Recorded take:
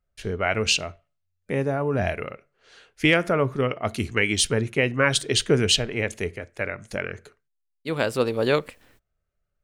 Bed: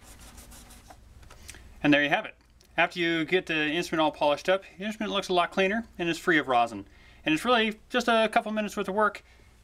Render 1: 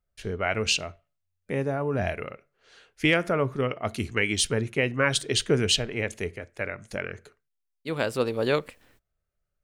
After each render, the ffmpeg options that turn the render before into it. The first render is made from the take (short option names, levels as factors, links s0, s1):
-af "volume=0.708"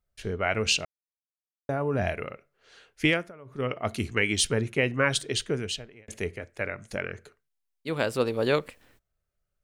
-filter_complex "[0:a]asplit=6[s0][s1][s2][s3][s4][s5];[s0]atrim=end=0.85,asetpts=PTS-STARTPTS,afade=t=out:st=0.846:d=0.004:c=hsin[s6];[s1]atrim=start=0.85:end=1.69,asetpts=PTS-STARTPTS,volume=0[s7];[s2]atrim=start=1.69:end=3.32,asetpts=PTS-STARTPTS,afade=t=in:d=0.004:c=hsin,afade=t=out:st=1.36:d=0.27:silence=0.0707946[s8];[s3]atrim=start=3.32:end=3.45,asetpts=PTS-STARTPTS,volume=0.0708[s9];[s4]atrim=start=3.45:end=6.08,asetpts=PTS-STARTPTS,afade=t=in:d=0.27:silence=0.0707946,afade=t=out:st=1.51:d=1.12[s10];[s5]atrim=start=6.08,asetpts=PTS-STARTPTS,afade=t=in:d=0.004:c=hsin[s11];[s6][s7][s8][s9][s10][s11]concat=n=6:v=0:a=1"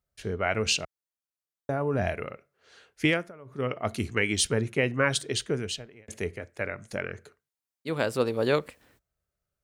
-af "highpass=48,equalizer=f=2800:w=1.5:g=-2.5"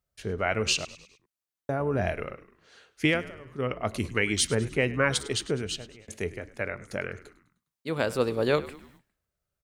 -filter_complex "[0:a]asplit=5[s0][s1][s2][s3][s4];[s1]adelay=102,afreqshift=-69,volume=0.133[s5];[s2]adelay=204,afreqshift=-138,volume=0.0653[s6];[s3]adelay=306,afreqshift=-207,volume=0.032[s7];[s4]adelay=408,afreqshift=-276,volume=0.0157[s8];[s0][s5][s6][s7][s8]amix=inputs=5:normalize=0"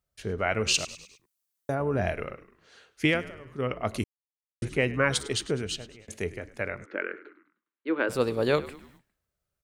-filter_complex "[0:a]asettb=1/sr,asplit=3[s0][s1][s2];[s0]atrim=end=0.744[s3];[s1]atrim=start=0.74:end=1.75,asetpts=PTS-STARTPTS,afade=t=in:d=0.004:c=qsin,afade=t=out:st=1.006:d=0.004:c=qsin,highshelf=f=5200:g=11.5[s4];[s2]atrim=start=1.746[s5];[s3][s4]acrossfade=d=0.004:c1=hsin:c2=qsin[s6];[s6][s5]acrossfade=d=0.004:c1=qsin:c2=hsin,asplit=3[s7][s8][s9];[s7]afade=t=out:st=6.84:d=0.02[s10];[s8]highpass=f=280:w=0.5412,highpass=f=280:w=1.3066,equalizer=f=320:t=q:w=4:g=9,equalizer=f=710:t=q:w=4:g=-8,equalizer=f=1500:t=q:w=4:g=5,lowpass=f=2800:w=0.5412,lowpass=f=2800:w=1.3066,afade=t=in:st=6.84:d=0.02,afade=t=out:st=8.08:d=0.02[s11];[s9]afade=t=in:st=8.08:d=0.02[s12];[s10][s11][s12]amix=inputs=3:normalize=0,asplit=3[s13][s14][s15];[s13]atrim=end=4.04,asetpts=PTS-STARTPTS,afade=t=out:st=4.036:d=0.004:c=hsin[s16];[s14]atrim=start=4.04:end=4.62,asetpts=PTS-STARTPTS,volume=0[s17];[s15]atrim=start=4.62,asetpts=PTS-STARTPTS,afade=t=in:d=0.004:c=hsin[s18];[s16][s17][s18]concat=n=3:v=0:a=1"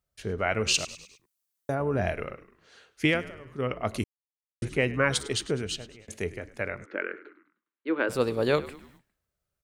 -af anull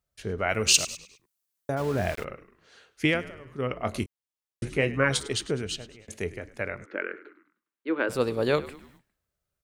-filter_complex "[0:a]asettb=1/sr,asplit=3[s0][s1][s2];[s0]atrim=end=0.494[s3];[s1]atrim=start=0.49:end=0.97,asetpts=PTS-STARTPTS,afade=t=in:d=0.004:c=qsin,afade=t=out:st=0.476:d=0.004:c=qsin,aemphasis=mode=production:type=50kf[s4];[s2]atrim=start=0.966[s5];[s3][s4]acrossfade=d=0.004:c1=hsin:c2=qsin[s6];[s6][s5]acrossfade=d=0.004:c1=qsin:c2=hsin,asplit=3[s7][s8][s9];[s7]afade=t=out:st=1.76:d=0.02[s10];[s8]aeval=exprs='val(0)*gte(abs(val(0)),0.0168)':c=same,afade=t=in:st=1.76:d=0.02,afade=t=out:st=2.23:d=0.02[s11];[s9]afade=t=in:st=2.23:d=0.02[s12];[s10][s11][s12]amix=inputs=3:normalize=0,asettb=1/sr,asplit=3[s13][s14][s15];[s13]atrim=end=3.824[s16];[s14]atrim=start=3.82:end=5.2,asetpts=PTS-STARTPTS,afade=t=in:d=0.004:c=qsin,afade=t=out:st=1.376:d=0.004:c=qsin,asplit=2[s17][s18];[s18]adelay=22,volume=0.299[s19];[s17][s19]amix=inputs=2:normalize=0,atrim=end_sample=60858[s20];[s15]atrim=start=5.196[s21];[s16][s20]acrossfade=d=0.004:c1=hsin:c2=qsin[s22];[s22][s21]acrossfade=d=0.004:c1=qsin:c2=hsin"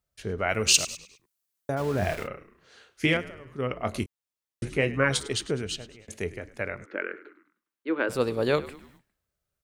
-filter_complex "[0:a]asettb=1/sr,asplit=3[s0][s1][s2];[s0]atrim=end=1.994[s3];[s1]atrim=start=1.99:end=3.17,asetpts=PTS-STARTPTS,afade=t=in:d=0.004:c=qsin,afade=t=out:st=1.176:d=0.004:c=qsin,asplit=2[s4][s5];[s5]adelay=31,volume=0.531[s6];[s4][s6]amix=inputs=2:normalize=0,atrim=end_sample=52038[s7];[s2]atrim=start=3.166[s8];[s3][s7]acrossfade=d=0.004:c1=hsin:c2=qsin[s9];[s9][s8]acrossfade=d=0.004:c1=qsin:c2=hsin"